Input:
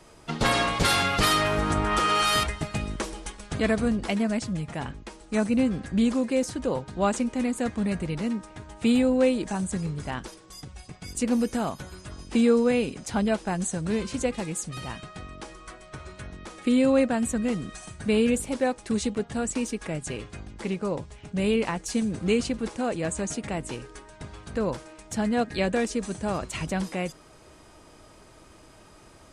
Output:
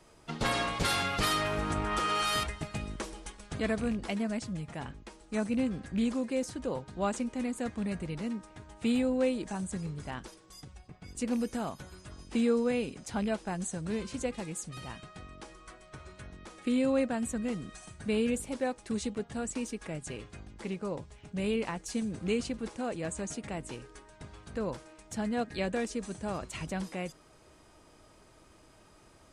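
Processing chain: rattling part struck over -24 dBFS, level -29 dBFS; 10.77–11.17 LPF 1200 Hz -> 3000 Hz 6 dB/oct; gain -7 dB

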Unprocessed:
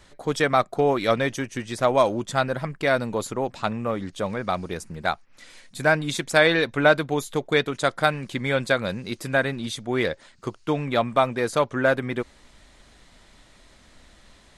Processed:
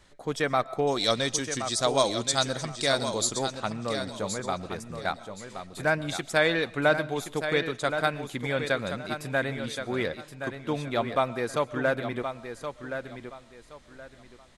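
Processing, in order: 0.87–3.39 band shelf 5800 Hz +16 dB; feedback echo 1.072 s, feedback 25%, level -8.5 dB; reverb RT60 0.35 s, pre-delay 85 ms, DRR 19.5 dB; gain -5.5 dB

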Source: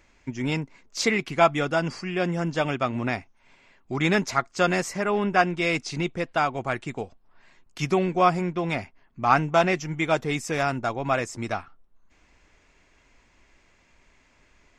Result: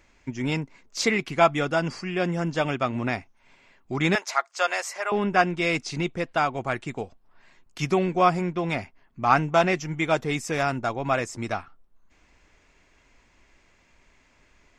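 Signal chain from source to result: 4.15–5.12 HPF 580 Hz 24 dB/oct

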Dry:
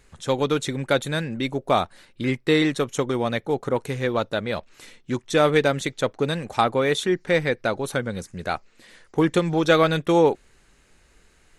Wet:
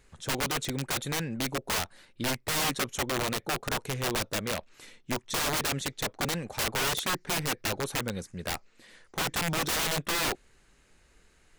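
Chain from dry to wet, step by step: wrapped overs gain 19 dB; gain -4.5 dB

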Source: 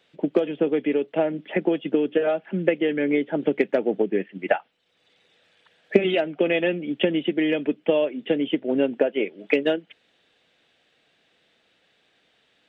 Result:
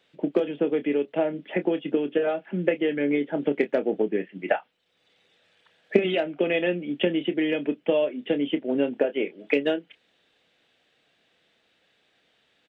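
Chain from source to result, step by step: doubler 28 ms -11 dB; gain -2.5 dB

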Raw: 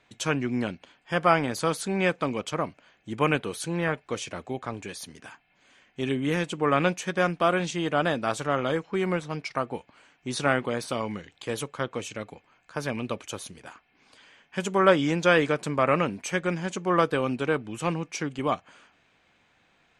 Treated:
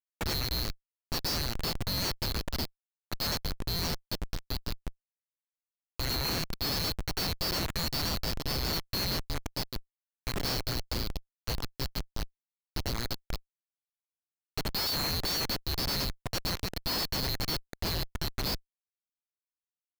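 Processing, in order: band-swap scrambler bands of 4000 Hz; Schmitt trigger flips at -25 dBFS; gain -2.5 dB

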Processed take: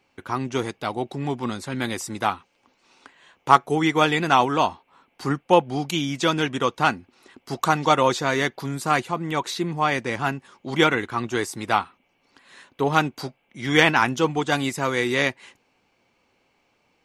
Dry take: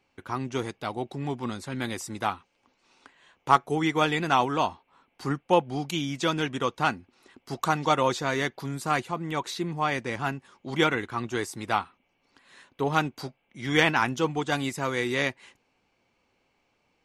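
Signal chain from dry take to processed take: low shelf 76 Hz -6 dB; gain +5 dB

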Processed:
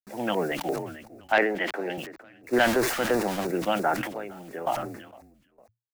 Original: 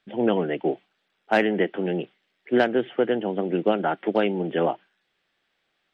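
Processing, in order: 2.53–3.47 zero-crossing step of -28 dBFS; requantised 8-bit, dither none; 1.32–1.98 three-band isolator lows -15 dB, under 250 Hz, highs -13 dB, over 4400 Hz; 3.98–4.67 compressor 5:1, threshold -32 dBFS, peak gain reduction 15 dB; bell 190 Hz -8.5 dB 2.6 oct; frequency-shifting echo 0.456 s, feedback 34%, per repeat -59 Hz, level -22 dB; LFO notch square 2.9 Hz 420–3100 Hz; sustainer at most 63 dB/s; gain +2 dB

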